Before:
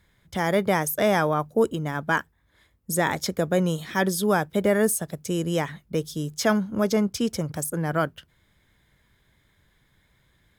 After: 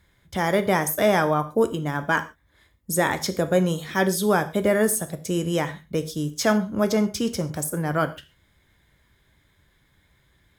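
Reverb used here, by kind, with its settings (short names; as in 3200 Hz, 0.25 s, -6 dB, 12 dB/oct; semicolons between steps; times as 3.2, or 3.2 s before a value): non-linear reverb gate 0.16 s falling, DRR 8.5 dB; gain +1 dB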